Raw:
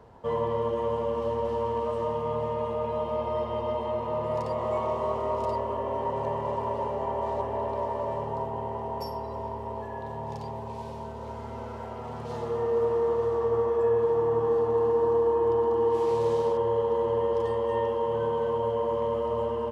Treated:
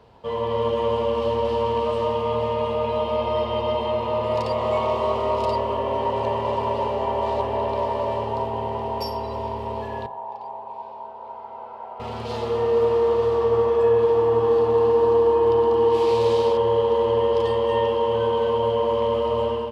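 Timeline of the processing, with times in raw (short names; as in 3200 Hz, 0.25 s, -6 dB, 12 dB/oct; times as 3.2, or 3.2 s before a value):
10.06–12 band-pass 850 Hz, Q 2.7
whole clip: band shelf 3400 Hz +8.5 dB 1.3 oct; notches 50/100/150/200/250/300/350 Hz; AGC gain up to 6 dB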